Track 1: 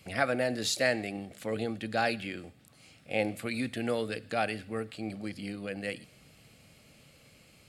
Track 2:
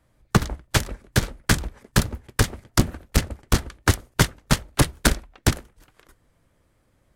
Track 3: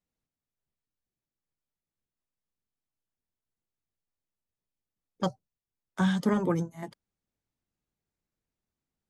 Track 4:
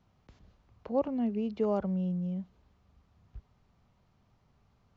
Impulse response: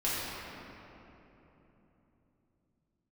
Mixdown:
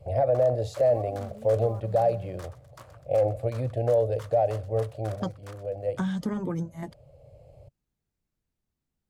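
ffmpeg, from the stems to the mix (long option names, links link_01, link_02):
-filter_complex "[0:a]firequalizer=gain_entry='entry(130,0);entry(200,-23);entry(570,10);entry(1300,-23)':delay=0.05:min_phase=1,volume=0dB[link_01];[1:a]aeval=exprs='if(lt(val(0),0),0.447*val(0),val(0))':channel_layout=same,highpass=740,volume=-18dB,asplit=2[link_02][link_03];[link_03]volume=-21dB[link_04];[2:a]acompressor=threshold=-31dB:ratio=4,volume=-7.5dB,asplit=2[link_05][link_06];[3:a]acrusher=bits=5:mode=log:mix=0:aa=0.000001,volume=-18.5dB[link_07];[link_06]apad=whole_len=343235[link_08];[link_01][link_08]sidechaincompress=threshold=-45dB:ratio=5:attack=16:release=1400[link_09];[link_09][link_05]amix=inputs=2:normalize=0,acontrast=88,alimiter=limit=-16dB:level=0:latency=1:release=53,volume=0dB[link_10];[link_02][link_07]amix=inputs=2:normalize=0,equalizer=frequency=1100:width=1.6:gain=13,alimiter=level_in=12dB:limit=-24dB:level=0:latency=1:release=27,volume=-12dB,volume=0dB[link_11];[link_04]aecho=0:1:126|252|378|504|630|756|882:1|0.48|0.23|0.111|0.0531|0.0255|0.0122[link_12];[link_10][link_11][link_12]amix=inputs=3:normalize=0,lowshelf=frequency=210:gain=9"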